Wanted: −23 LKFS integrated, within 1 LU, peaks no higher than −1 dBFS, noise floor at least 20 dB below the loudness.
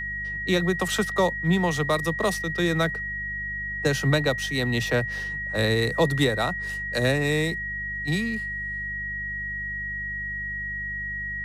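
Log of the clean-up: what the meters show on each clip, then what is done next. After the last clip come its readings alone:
mains hum 50 Hz; hum harmonics up to 200 Hz; level of the hum −38 dBFS; interfering tone 1,900 Hz; level of the tone −29 dBFS; integrated loudness −25.5 LKFS; sample peak −9.0 dBFS; target loudness −23.0 LKFS
→ hum removal 50 Hz, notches 4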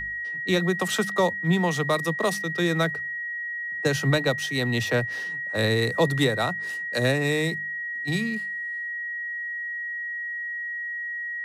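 mains hum none found; interfering tone 1,900 Hz; level of the tone −29 dBFS
→ notch filter 1,900 Hz, Q 30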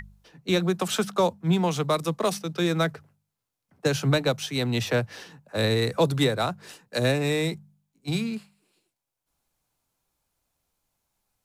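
interfering tone none found; integrated loudness −26.0 LKFS; sample peak −9.5 dBFS; target loudness −23.0 LKFS
→ level +3 dB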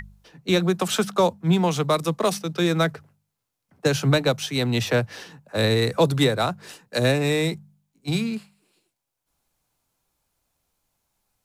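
integrated loudness −23.0 LKFS; sample peak −6.5 dBFS; background noise floor −82 dBFS

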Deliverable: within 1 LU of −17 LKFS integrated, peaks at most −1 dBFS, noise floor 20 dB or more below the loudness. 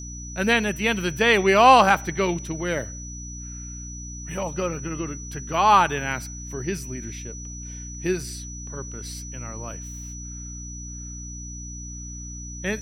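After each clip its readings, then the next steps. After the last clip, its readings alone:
mains hum 60 Hz; hum harmonics up to 300 Hz; level of the hum −35 dBFS; interfering tone 5,900 Hz; level of the tone −38 dBFS; integrated loudness −22.5 LKFS; sample peak −3.0 dBFS; target loudness −17.0 LKFS
→ hum removal 60 Hz, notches 5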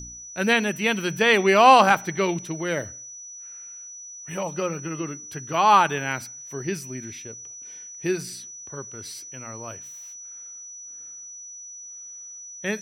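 mains hum none found; interfering tone 5,900 Hz; level of the tone −38 dBFS
→ notch filter 5,900 Hz, Q 30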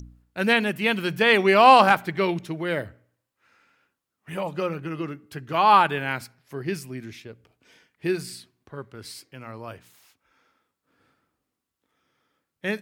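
interfering tone none found; integrated loudness −22.0 LKFS; sample peak −3.0 dBFS; target loudness −17.0 LKFS
→ level +5 dB
brickwall limiter −1 dBFS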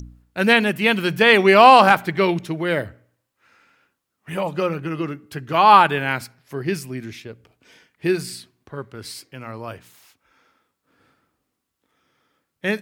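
integrated loudness −17.5 LKFS; sample peak −1.0 dBFS; background noise floor −78 dBFS

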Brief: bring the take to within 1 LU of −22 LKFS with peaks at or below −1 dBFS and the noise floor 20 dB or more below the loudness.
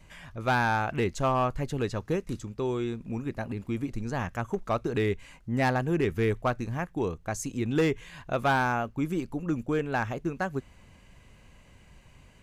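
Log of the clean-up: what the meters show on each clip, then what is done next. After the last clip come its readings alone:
share of clipped samples 0.5%; peaks flattened at −18.5 dBFS; integrated loudness −29.5 LKFS; sample peak −18.5 dBFS; target loudness −22.0 LKFS
→ clipped peaks rebuilt −18.5 dBFS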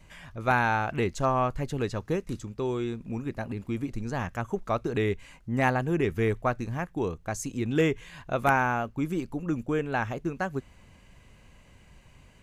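share of clipped samples 0.0%; integrated loudness −29.5 LKFS; sample peak −9.5 dBFS; target loudness −22.0 LKFS
→ level +7.5 dB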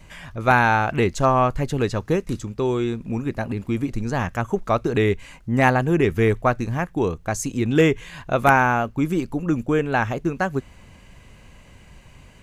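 integrated loudness −22.0 LKFS; sample peak −2.0 dBFS; background noise floor −48 dBFS

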